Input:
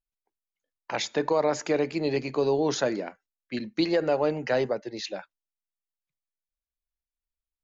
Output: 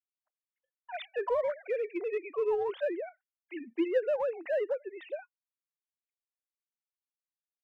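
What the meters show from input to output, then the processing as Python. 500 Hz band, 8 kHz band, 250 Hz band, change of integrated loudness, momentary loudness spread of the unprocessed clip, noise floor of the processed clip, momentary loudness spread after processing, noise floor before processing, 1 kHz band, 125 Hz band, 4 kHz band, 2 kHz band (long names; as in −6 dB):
−4.5 dB, can't be measured, −10.0 dB, −5.5 dB, 11 LU, below −85 dBFS, 13 LU, below −85 dBFS, −8.0 dB, below −30 dB, below −15 dB, −8.0 dB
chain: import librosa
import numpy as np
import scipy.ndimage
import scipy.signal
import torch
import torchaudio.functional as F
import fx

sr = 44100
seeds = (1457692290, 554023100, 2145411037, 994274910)

p1 = fx.sine_speech(x, sr)
p2 = scipy.signal.sosfilt(scipy.signal.butter(2, 340.0, 'highpass', fs=sr, output='sos'), p1)
p3 = np.clip(p2, -10.0 ** (-27.0 / 20.0), 10.0 ** (-27.0 / 20.0))
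p4 = p2 + (p3 * librosa.db_to_amplitude(-10.0))
y = p4 * librosa.db_to_amplitude(-6.0)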